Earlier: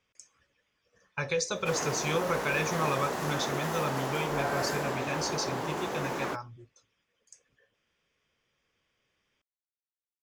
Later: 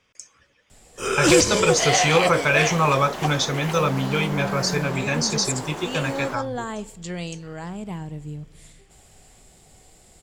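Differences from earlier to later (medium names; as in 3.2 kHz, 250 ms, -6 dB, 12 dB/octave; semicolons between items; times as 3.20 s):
speech +11.0 dB; first sound: unmuted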